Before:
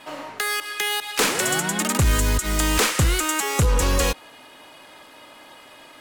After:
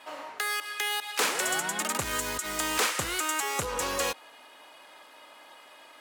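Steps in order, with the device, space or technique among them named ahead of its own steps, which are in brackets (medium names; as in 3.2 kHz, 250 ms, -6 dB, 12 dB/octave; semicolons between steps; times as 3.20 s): filter by subtraction (in parallel: low-pass 800 Hz 12 dB/octave + polarity flip); on the sum: trim -6.5 dB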